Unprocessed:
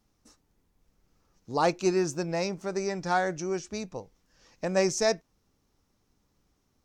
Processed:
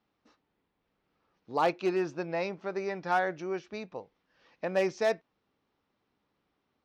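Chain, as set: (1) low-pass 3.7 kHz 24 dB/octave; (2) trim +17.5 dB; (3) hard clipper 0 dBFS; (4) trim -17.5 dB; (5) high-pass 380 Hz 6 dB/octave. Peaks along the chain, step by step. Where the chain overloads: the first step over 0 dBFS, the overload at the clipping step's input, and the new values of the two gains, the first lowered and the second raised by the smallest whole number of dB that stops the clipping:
-12.5 dBFS, +5.0 dBFS, 0.0 dBFS, -17.5 dBFS, -14.5 dBFS; step 2, 5.0 dB; step 2 +12.5 dB, step 4 -12.5 dB

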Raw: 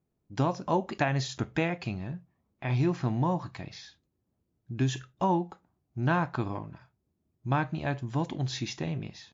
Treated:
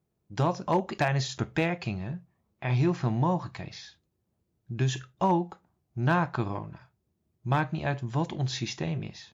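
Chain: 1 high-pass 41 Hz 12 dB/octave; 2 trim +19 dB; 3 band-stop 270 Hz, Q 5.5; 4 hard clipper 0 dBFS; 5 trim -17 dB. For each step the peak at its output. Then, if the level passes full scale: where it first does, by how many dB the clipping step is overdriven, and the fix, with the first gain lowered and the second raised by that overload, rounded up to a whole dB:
-13.0 dBFS, +6.0 dBFS, +6.5 dBFS, 0.0 dBFS, -17.0 dBFS; step 2, 6.5 dB; step 2 +12 dB, step 5 -10 dB

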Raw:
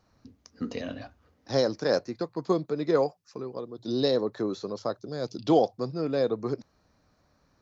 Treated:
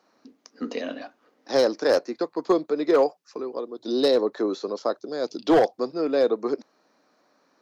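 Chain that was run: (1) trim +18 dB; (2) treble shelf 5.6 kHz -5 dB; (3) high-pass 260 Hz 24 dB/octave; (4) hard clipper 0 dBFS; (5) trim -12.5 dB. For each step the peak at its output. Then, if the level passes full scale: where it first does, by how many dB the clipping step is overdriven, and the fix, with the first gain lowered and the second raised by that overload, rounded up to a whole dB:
+8.0 dBFS, +8.0 dBFS, +7.0 dBFS, 0.0 dBFS, -12.5 dBFS; step 1, 7.0 dB; step 1 +11 dB, step 5 -5.5 dB

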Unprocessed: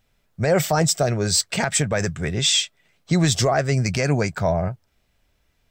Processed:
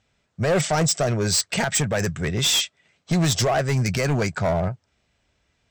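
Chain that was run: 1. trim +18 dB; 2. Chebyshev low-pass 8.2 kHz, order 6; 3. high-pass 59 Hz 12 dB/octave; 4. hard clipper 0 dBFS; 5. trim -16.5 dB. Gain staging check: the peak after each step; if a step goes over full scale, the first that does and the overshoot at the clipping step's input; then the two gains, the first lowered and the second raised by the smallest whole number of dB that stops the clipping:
+9.0 dBFS, +9.0 dBFS, +9.5 dBFS, 0.0 dBFS, -16.5 dBFS; step 1, 9.5 dB; step 1 +8 dB, step 5 -6.5 dB

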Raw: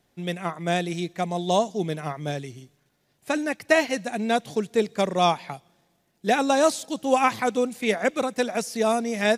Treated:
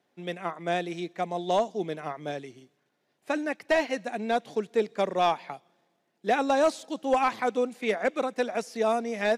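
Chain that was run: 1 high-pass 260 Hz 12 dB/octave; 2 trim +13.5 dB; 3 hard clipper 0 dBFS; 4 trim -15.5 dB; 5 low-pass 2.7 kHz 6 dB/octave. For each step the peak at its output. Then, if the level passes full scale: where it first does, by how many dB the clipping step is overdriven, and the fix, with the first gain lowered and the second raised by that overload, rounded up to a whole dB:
-4.0 dBFS, +9.5 dBFS, 0.0 dBFS, -15.5 dBFS, -15.5 dBFS; step 2, 9.5 dB; step 2 +3.5 dB, step 4 -5.5 dB

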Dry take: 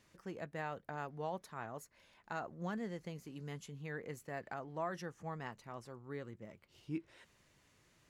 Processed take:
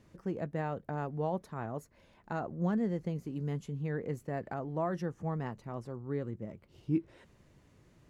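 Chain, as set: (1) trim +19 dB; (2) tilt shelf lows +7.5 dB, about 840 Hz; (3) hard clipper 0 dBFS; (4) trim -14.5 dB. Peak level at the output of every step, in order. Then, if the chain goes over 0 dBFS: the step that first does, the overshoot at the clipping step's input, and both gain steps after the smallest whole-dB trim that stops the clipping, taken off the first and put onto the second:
-8.5 dBFS, -5.5 dBFS, -5.5 dBFS, -20.0 dBFS; nothing clips

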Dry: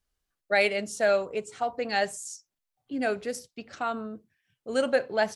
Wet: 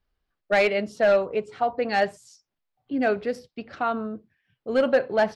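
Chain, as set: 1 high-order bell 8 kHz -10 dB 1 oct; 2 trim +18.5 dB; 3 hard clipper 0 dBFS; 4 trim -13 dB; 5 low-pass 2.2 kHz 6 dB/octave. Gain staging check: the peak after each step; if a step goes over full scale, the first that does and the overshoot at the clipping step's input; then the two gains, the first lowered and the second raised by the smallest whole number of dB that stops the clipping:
-11.5 dBFS, +7.0 dBFS, 0.0 dBFS, -13.0 dBFS, -13.0 dBFS; step 2, 7.0 dB; step 2 +11.5 dB, step 4 -6 dB

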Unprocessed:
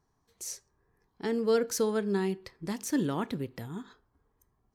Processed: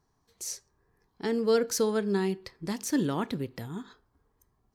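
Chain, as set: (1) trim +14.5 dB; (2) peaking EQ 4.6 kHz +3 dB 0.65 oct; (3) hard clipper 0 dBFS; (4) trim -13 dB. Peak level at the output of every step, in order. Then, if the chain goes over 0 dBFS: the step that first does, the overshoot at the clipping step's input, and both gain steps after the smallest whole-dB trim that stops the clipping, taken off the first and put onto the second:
-2.0 dBFS, -1.5 dBFS, -1.5 dBFS, -14.5 dBFS; nothing clips

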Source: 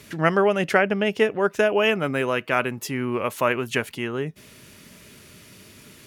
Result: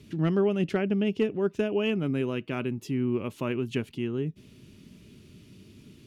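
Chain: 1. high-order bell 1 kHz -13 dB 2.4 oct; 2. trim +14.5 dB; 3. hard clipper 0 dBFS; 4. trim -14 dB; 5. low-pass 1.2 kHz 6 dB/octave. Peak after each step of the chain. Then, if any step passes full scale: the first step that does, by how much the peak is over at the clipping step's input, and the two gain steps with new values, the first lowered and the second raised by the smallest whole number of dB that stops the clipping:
-10.5 dBFS, +4.0 dBFS, 0.0 dBFS, -14.0 dBFS, -14.5 dBFS; step 2, 4.0 dB; step 2 +10.5 dB, step 4 -10 dB

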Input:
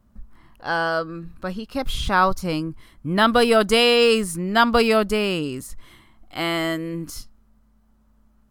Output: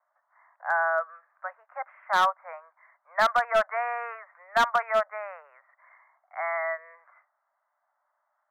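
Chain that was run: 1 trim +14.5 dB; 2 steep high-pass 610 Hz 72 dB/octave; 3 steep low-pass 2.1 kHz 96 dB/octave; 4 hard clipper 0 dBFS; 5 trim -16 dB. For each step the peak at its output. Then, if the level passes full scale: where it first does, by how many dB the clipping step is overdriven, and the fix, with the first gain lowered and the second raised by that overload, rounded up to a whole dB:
+10.5 dBFS, +10.0 dBFS, +9.5 dBFS, 0.0 dBFS, -16.0 dBFS; step 1, 9.5 dB; step 1 +4.5 dB, step 5 -6 dB

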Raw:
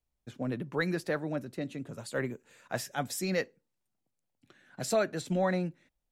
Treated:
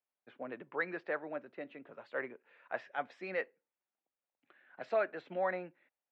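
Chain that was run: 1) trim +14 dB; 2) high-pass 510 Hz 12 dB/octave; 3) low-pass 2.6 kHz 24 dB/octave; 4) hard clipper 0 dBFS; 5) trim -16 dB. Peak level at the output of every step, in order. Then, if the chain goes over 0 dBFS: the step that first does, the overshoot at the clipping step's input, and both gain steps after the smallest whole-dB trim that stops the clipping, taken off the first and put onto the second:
-3.5 dBFS, -5.0 dBFS, -5.5 dBFS, -5.5 dBFS, -21.5 dBFS; nothing clips

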